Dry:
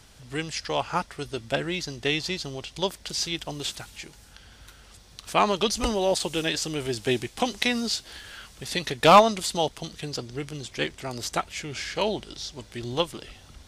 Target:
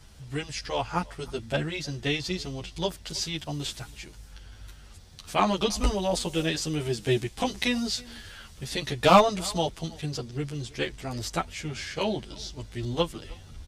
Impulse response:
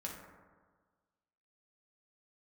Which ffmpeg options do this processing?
-filter_complex "[0:a]lowshelf=f=160:g=10,asplit=2[a][b];[b]adelay=320.7,volume=-23dB,highshelf=f=4k:g=-7.22[c];[a][c]amix=inputs=2:normalize=0,asplit=2[d][e];[e]adelay=10.4,afreqshift=-0.59[f];[d][f]amix=inputs=2:normalize=1"

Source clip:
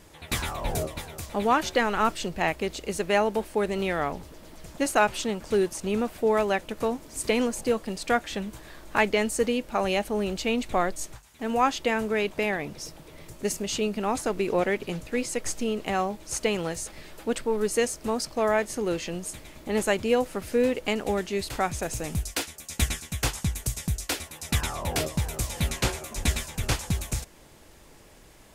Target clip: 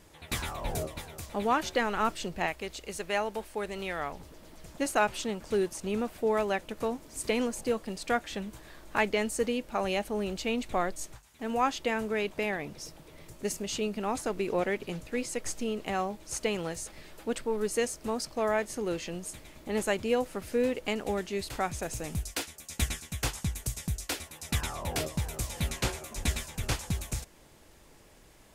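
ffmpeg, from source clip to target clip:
-filter_complex "[0:a]asettb=1/sr,asplit=3[a][b][c];[a]atrim=end=2.464[d];[b]atrim=start=2.46:end=4.2,asetpts=PTS-STARTPTS,afade=t=in:d=0.004:c=qsin,afade=t=out:st=1.736:d=0.004:c=qsin,equalizer=f=220:t=o:w=2.9:g=-6.5[e];[c]atrim=start=4.196[f];[d][e]acrossfade=d=0.004:c1=hsin:c2=qsin[g];[g][f]acrossfade=d=0.004:c1=qsin:c2=hsin,volume=-4.5dB"

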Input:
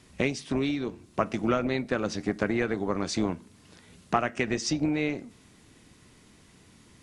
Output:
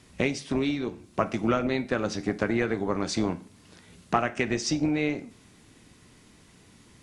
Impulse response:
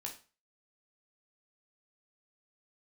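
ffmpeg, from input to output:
-filter_complex "[0:a]asplit=2[a][b];[1:a]atrim=start_sample=2205,asetrate=38808,aresample=44100[c];[b][c]afir=irnorm=-1:irlink=0,volume=-6dB[d];[a][d]amix=inputs=2:normalize=0,volume=-1.5dB"

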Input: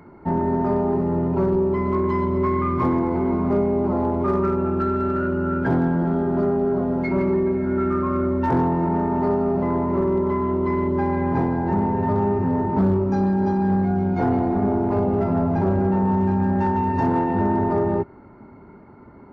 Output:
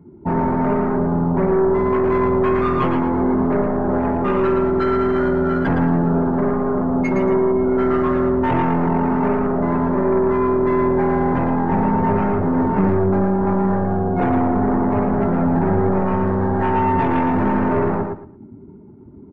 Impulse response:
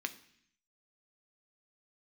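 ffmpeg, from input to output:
-filter_complex "[0:a]adynamicsmooth=sensitivity=4.5:basefreq=1k,aeval=exprs='0.251*(cos(1*acos(clip(val(0)/0.251,-1,1)))-cos(1*PI/2))+0.0631*(cos(2*acos(clip(val(0)/0.251,-1,1)))-cos(2*PI/2))+0.0562*(cos(5*acos(clip(val(0)/0.251,-1,1)))-cos(5*PI/2))+0.00708*(cos(7*acos(clip(val(0)/0.251,-1,1)))-cos(7*PI/2))':c=same,afftdn=nr=17:nf=-33,asplit=2[a][b];[b]aecho=0:1:113|226|339:0.531|0.117|0.0257[c];[a][c]amix=inputs=2:normalize=0"

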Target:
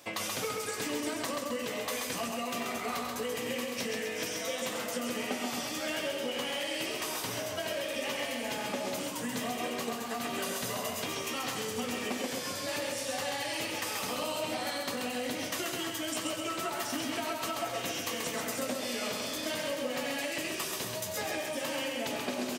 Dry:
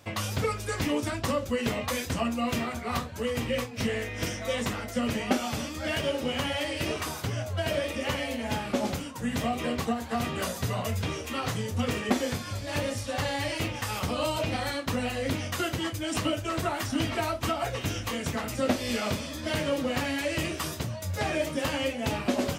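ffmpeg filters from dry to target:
-filter_complex "[0:a]highpass=250,highshelf=f=4.6k:g=6.5,bandreject=f=1.4k:w=25,asplit=2[a][b];[b]adelay=16,volume=-12dB[c];[a][c]amix=inputs=2:normalize=0,asplit=2[d][e];[e]aecho=0:1:92:0.299[f];[d][f]amix=inputs=2:normalize=0,acompressor=threshold=-33dB:ratio=6,asplit=2[g][h];[h]aecho=0:1:133|266|399|532|665|798:0.631|0.278|0.122|0.0537|0.0236|0.0104[i];[g][i]amix=inputs=2:normalize=0"

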